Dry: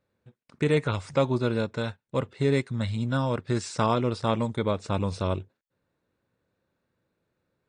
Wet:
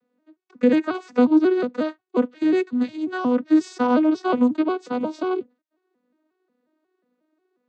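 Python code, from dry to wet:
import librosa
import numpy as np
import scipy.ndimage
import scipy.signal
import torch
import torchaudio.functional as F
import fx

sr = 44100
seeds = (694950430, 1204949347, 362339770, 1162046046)

y = fx.vocoder_arp(x, sr, chord='major triad', root=59, every_ms=180)
y = y * 10.0 ** (7.0 / 20.0)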